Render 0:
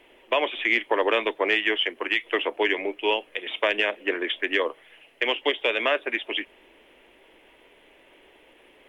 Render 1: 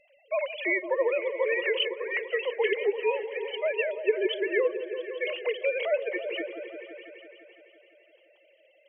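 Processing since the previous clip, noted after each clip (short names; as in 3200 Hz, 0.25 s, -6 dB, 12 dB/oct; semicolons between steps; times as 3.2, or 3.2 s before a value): sine-wave speech; bell 1300 Hz -14.5 dB 1.1 oct; repeats that get brighter 0.169 s, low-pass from 400 Hz, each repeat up 1 oct, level -6 dB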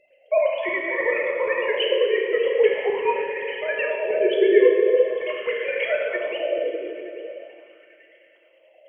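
chopper 9.5 Hz, depth 65%, duty 55%; plate-style reverb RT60 2.4 s, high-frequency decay 0.8×, DRR -1.5 dB; LFO bell 0.43 Hz 380–1800 Hz +12 dB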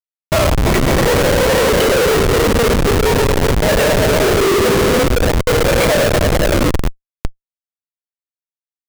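in parallel at -6 dB: decimation with a swept rate 35×, swing 160% 0.47 Hz; on the sum: Schmitt trigger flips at -21.5 dBFS; gain +9 dB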